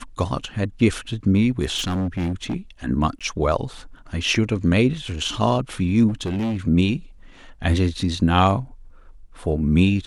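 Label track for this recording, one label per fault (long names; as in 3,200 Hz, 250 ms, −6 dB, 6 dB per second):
1.760000	2.550000	clipping −20.5 dBFS
3.190000	3.210000	drop-out 16 ms
6.080000	6.570000	clipping −21 dBFS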